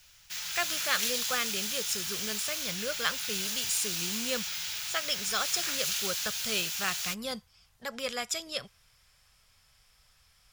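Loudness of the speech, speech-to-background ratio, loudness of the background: -34.0 LUFS, -2.5 dB, -31.5 LUFS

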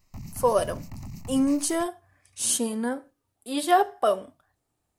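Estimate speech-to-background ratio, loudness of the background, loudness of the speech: 17.0 dB, -42.5 LUFS, -25.5 LUFS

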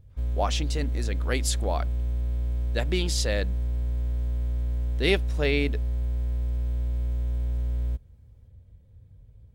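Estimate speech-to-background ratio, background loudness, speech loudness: 0.5 dB, -30.0 LUFS, -29.5 LUFS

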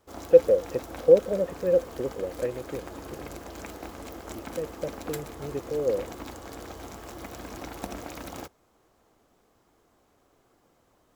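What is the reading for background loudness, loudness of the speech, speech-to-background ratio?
-41.0 LUFS, -25.0 LUFS, 16.0 dB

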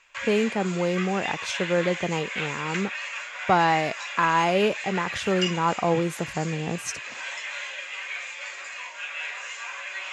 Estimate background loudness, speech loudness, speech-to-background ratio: -32.5 LUFS, -26.0 LUFS, 6.5 dB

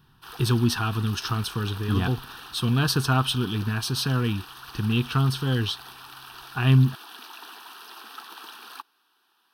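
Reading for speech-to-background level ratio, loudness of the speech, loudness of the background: 17.0 dB, -25.0 LUFS, -42.0 LUFS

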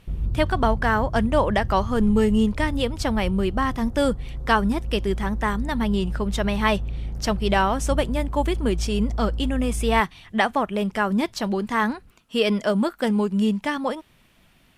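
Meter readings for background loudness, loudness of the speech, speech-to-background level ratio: -31.0 LUFS, -23.5 LUFS, 7.5 dB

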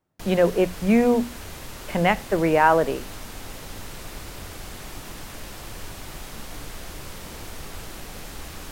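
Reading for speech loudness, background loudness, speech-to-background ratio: -21.0 LUFS, -38.0 LUFS, 17.0 dB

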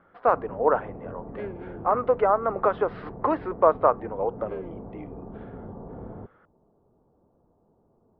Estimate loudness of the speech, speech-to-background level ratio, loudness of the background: -25.0 LUFS, 16.0 dB, -41.0 LUFS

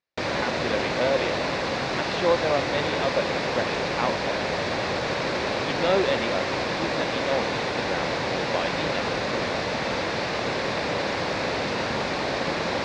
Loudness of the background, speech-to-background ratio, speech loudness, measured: -26.5 LUFS, -3.0 dB, -29.5 LUFS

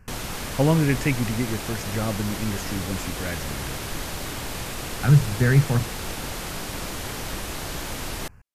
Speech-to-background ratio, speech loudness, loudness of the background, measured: 7.5 dB, -24.0 LUFS, -31.5 LUFS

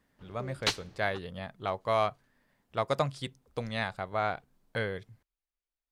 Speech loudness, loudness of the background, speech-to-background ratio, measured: -34.0 LUFS, -33.0 LUFS, -1.0 dB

